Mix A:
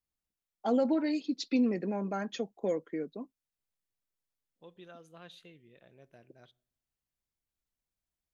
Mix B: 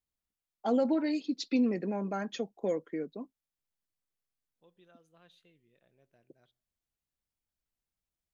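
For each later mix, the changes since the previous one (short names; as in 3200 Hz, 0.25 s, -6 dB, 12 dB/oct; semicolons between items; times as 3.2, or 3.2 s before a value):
second voice -10.5 dB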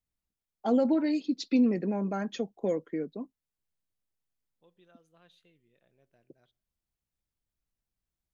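first voice: add low shelf 320 Hz +6 dB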